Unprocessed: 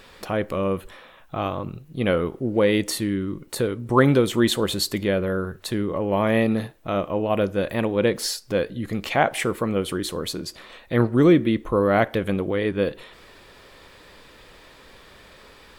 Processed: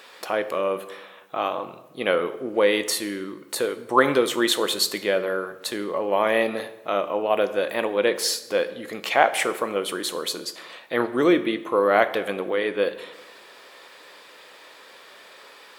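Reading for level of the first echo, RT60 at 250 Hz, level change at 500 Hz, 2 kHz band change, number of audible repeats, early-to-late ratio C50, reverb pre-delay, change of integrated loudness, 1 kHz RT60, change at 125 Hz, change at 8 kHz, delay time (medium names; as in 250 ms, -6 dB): no echo, 1.3 s, 0.0 dB, +2.5 dB, no echo, 14.0 dB, 10 ms, -0.5 dB, 0.95 s, -17.0 dB, +2.5 dB, no echo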